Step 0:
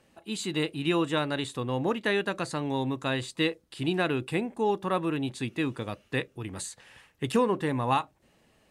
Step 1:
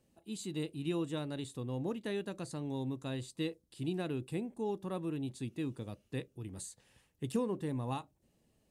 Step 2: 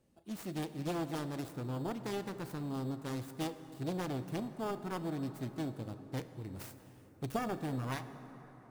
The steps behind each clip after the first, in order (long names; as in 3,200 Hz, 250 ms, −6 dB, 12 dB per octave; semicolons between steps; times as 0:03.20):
parametric band 1,600 Hz −13.5 dB 2.9 octaves; level −5 dB
phase distortion by the signal itself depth 0.99 ms; in parallel at −5.5 dB: decimation without filtering 11×; on the sum: convolution reverb RT60 4.6 s, pre-delay 28 ms, DRR 11 dB; level −3.5 dB